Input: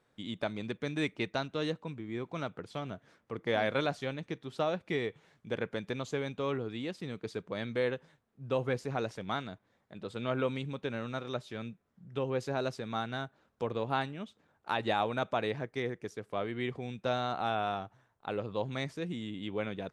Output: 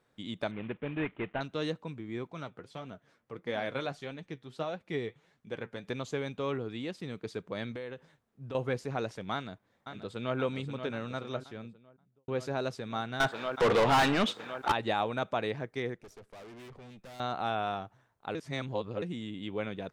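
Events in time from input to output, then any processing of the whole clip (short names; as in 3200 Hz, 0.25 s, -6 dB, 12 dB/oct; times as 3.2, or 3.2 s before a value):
0.51–1.41 CVSD 16 kbps
2.27–5.85 flange 1.6 Hz, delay 3.6 ms, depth 5.4 ms, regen +57%
7.71–8.55 compressor 4:1, threshold -38 dBFS
9.33–10.37 echo throw 0.53 s, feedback 70%, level -8.5 dB
11.17–12.28 studio fade out
13.2–14.72 overdrive pedal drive 34 dB, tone 3800 Hz, clips at -16.5 dBFS
15.95–17.2 tube stage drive 47 dB, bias 0.75
18.35–19.02 reverse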